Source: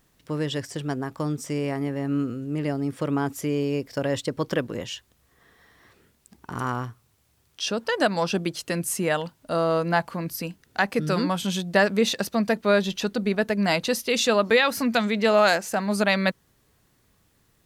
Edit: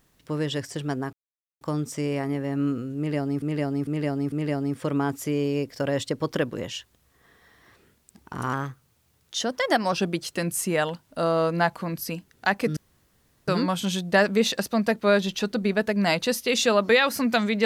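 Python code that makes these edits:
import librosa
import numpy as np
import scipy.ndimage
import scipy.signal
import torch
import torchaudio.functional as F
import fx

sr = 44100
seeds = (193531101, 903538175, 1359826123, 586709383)

y = fx.edit(x, sr, fx.insert_silence(at_s=1.13, length_s=0.48),
    fx.repeat(start_s=2.49, length_s=0.45, count=4),
    fx.speed_span(start_s=6.7, length_s=1.55, speed=1.11),
    fx.insert_room_tone(at_s=11.09, length_s=0.71), tone=tone)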